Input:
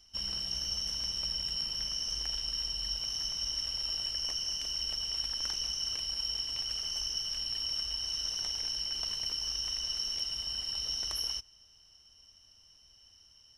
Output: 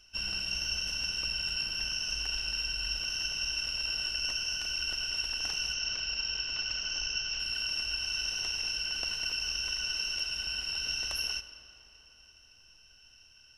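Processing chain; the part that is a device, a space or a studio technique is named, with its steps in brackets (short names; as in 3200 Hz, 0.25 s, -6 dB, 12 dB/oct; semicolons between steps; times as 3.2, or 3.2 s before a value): 5.73–7.4 steep low-pass 6900 Hz 36 dB/oct; digital reverb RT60 4.1 s, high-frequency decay 0.65×, pre-delay 0 ms, DRR 11 dB; octave pedal (harmoniser -12 st -5 dB)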